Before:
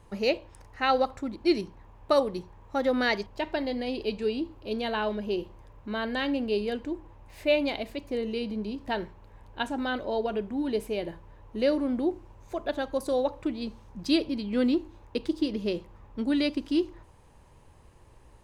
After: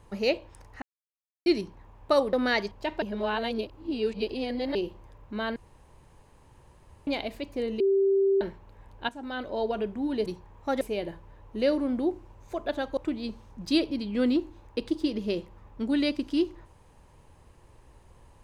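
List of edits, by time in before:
0:00.82–0:01.46: silence
0:02.33–0:02.88: move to 0:10.81
0:03.57–0:05.30: reverse
0:06.11–0:07.62: fill with room tone
0:08.35–0:08.96: beep over 391 Hz −19.5 dBFS
0:09.64–0:10.18: fade in, from −13 dB
0:12.97–0:13.35: remove

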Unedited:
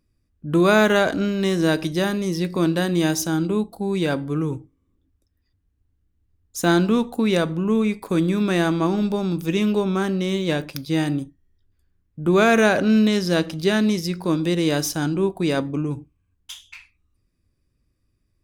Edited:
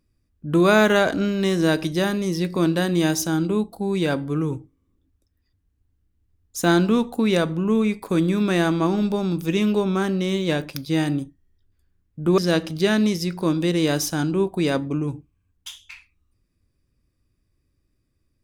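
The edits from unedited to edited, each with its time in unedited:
0:12.38–0:13.21: remove

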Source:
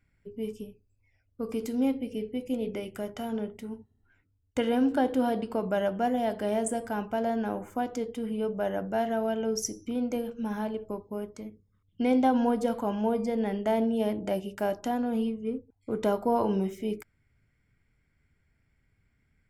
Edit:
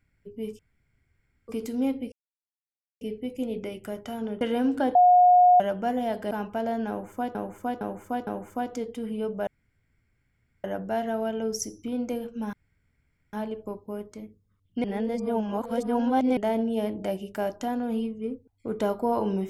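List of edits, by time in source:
0:00.59–0:01.48: fill with room tone
0:02.12: splice in silence 0.89 s
0:03.52–0:04.58: remove
0:05.12–0:05.77: beep over 720 Hz −13 dBFS
0:06.48–0:06.89: remove
0:07.47–0:07.93: repeat, 4 plays
0:08.67: splice in room tone 1.17 s
0:10.56: splice in room tone 0.80 s
0:12.07–0:13.60: reverse

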